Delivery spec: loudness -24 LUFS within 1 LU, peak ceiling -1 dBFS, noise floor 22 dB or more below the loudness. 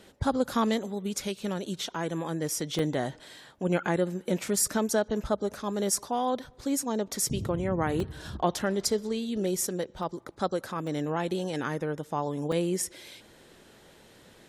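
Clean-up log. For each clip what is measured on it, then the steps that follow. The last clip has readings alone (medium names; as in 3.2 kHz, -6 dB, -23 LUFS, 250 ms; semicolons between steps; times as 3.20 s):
dropouts 5; longest dropout 2.2 ms; loudness -30.0 LUFS; peak level -12.0 dBFS; loudness target -24.0 LUFS
-> interpolate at 2.79/8.00/10.03/10.87/12.52 s, 2.2 ms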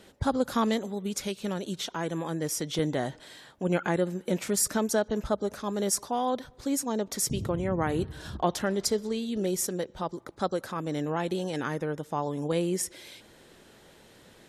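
dropouts 0; loudness -30.0 LUFS; peak level -12.0 dBFS; loudness target -24.0 LUFS
-> trim +6 dB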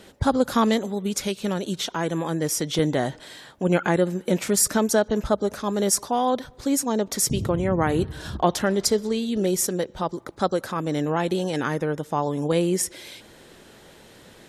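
loudness -24.0 LUFS; peak level -6.0 dBFS; noise floor -50 dBFS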